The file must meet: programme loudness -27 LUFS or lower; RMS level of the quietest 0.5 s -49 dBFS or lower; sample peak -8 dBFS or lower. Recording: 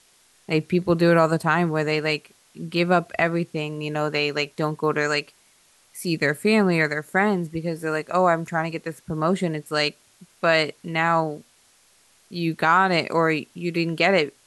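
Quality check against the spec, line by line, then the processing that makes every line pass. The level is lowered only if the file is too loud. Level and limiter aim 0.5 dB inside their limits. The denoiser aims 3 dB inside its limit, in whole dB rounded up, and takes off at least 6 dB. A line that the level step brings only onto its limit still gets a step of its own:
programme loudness -22.5 LUFS: fail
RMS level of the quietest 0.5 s -59 dBFS: pass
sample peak -4.5 dBFS: fail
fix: trim -5 dB

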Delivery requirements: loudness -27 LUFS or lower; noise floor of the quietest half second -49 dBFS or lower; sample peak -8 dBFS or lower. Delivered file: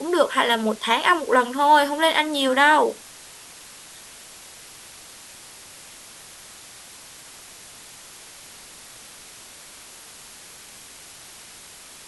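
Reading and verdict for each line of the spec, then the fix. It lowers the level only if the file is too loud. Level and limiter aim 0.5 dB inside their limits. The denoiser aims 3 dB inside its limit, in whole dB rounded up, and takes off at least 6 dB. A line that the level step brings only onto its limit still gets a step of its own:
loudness -19.0 LUFS: fail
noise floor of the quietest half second -44 dBFS: fail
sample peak -4.0 dBFS: fail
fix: trim -8.5 dB

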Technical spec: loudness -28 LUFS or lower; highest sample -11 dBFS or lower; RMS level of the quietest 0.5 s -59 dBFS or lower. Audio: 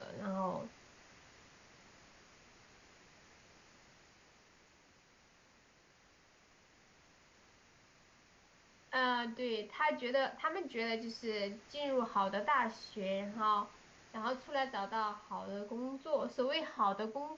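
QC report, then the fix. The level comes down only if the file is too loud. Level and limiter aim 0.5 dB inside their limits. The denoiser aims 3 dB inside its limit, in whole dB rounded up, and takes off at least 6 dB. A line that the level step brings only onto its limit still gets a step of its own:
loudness -37.5 LUFS: pass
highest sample -21.5 dBFS: pass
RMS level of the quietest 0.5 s -67 dBFS: pass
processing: none needed

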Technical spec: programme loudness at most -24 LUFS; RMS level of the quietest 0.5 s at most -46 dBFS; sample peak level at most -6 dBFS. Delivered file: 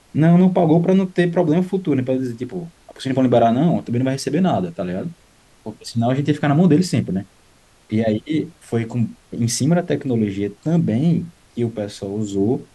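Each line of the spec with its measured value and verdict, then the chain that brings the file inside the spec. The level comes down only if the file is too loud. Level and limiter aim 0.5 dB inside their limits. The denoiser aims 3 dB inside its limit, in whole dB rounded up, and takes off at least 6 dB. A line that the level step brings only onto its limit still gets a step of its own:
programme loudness -19.0 LUFS: fail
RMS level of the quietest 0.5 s -53 dBFS: pass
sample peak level -5.0 dBFS: fail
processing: trim -5.5 dB

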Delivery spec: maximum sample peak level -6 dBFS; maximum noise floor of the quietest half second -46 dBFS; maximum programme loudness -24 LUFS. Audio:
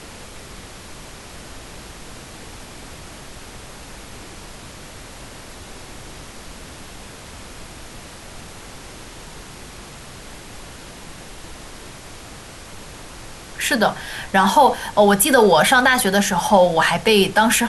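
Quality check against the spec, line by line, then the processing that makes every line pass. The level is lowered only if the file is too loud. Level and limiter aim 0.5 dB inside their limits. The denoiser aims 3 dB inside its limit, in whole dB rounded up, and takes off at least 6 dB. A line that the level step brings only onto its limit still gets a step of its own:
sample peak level -3.0 dBFS: fail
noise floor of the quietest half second -38 dBFS: fail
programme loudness -15.5 LUFS: fail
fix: trim -9 dB

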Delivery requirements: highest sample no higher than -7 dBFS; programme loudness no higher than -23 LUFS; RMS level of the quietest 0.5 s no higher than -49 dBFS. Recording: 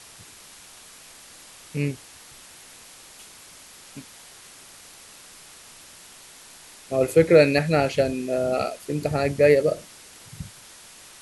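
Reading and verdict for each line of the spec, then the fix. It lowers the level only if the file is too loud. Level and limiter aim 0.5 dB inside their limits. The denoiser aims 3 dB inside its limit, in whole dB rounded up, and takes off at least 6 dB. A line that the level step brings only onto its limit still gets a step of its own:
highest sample -4.0 dBFS: fail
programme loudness -21.5 LUFS: fail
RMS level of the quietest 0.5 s -47 dBFS: fail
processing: noise reduction 6 dB, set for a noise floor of -47 dBFS; trim -2 dB; peak limiter -7.5 dBFS

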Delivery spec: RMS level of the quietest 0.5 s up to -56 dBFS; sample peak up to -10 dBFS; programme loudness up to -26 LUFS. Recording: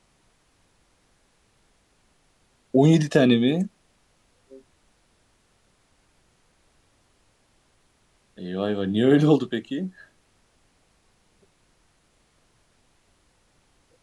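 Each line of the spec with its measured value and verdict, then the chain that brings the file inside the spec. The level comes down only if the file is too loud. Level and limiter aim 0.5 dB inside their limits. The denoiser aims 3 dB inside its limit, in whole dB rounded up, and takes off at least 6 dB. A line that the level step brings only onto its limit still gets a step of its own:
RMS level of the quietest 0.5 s -64 dBFS: pass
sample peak -5.0 dBFS: fail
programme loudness -21.5 LUFS: fail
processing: trim -5 dB; peak limiter -10.5 dBFS

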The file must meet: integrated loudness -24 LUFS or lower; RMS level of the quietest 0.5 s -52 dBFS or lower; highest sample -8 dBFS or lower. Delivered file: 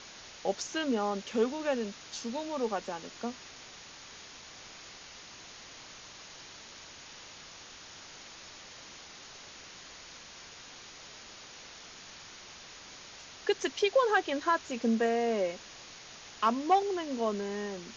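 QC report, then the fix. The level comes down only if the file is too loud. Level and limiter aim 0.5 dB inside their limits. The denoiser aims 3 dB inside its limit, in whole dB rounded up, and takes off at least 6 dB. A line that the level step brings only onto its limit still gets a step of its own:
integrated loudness -31.5 LUFS: pass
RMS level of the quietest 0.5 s -50 dBFS: fail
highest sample -15.0 dBFS: pass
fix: noise reduction 6 dB, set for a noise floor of -50 dBFS

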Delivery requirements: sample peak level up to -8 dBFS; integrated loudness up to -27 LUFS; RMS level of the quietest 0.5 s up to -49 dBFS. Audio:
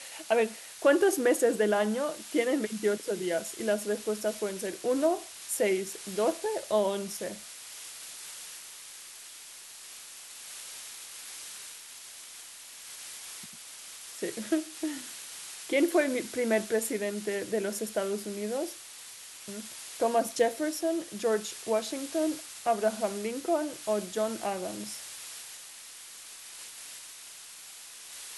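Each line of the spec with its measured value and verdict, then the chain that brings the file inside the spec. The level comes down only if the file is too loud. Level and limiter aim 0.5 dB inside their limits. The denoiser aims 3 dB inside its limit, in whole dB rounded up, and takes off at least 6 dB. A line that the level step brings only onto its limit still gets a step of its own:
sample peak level -12.0 dBFS: pass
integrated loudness -31.0 LUFS: pass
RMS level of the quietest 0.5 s -47 dBFS: fail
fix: noise reduction 6 dB, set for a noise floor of -47 dBFS

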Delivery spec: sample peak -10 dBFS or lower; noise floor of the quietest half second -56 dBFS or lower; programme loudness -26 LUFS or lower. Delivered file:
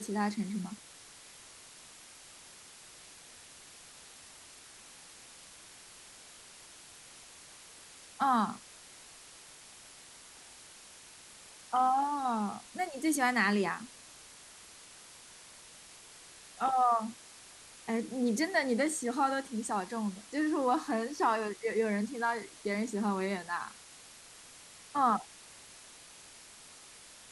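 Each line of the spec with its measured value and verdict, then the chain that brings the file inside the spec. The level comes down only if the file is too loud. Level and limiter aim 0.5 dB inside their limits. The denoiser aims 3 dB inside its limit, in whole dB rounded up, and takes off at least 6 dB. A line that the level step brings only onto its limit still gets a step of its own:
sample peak -15.5 dBFS: pass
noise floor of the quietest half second -54 dBFS: fail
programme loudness -32.0 LUFS: pass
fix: noise reduction 6 dB, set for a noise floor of -54 dBFS

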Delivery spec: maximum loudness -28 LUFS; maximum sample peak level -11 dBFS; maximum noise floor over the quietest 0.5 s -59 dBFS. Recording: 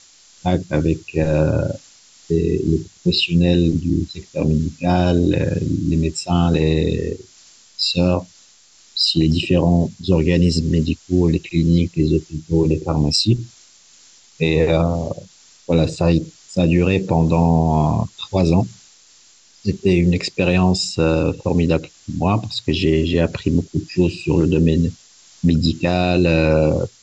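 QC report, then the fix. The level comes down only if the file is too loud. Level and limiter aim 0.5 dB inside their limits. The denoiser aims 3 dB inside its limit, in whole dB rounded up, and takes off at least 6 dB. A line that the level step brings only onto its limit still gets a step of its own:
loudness -18.5 LUFS: fail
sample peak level -5.0 dBFS: fail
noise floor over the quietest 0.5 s -50 dBFS: fail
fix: trim -10 dB

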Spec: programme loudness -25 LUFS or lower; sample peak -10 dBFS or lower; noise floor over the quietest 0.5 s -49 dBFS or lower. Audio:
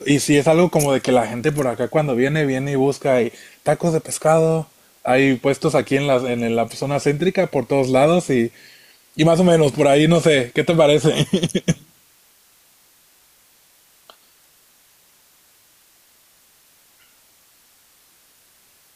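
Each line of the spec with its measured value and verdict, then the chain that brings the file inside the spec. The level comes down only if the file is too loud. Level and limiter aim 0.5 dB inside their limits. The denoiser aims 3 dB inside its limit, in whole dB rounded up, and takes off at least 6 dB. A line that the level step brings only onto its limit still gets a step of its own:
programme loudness -17.5 LUFS: fail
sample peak -3.5 dBFS: fail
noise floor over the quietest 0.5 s -55 dBFS: pass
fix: trim -8 dB

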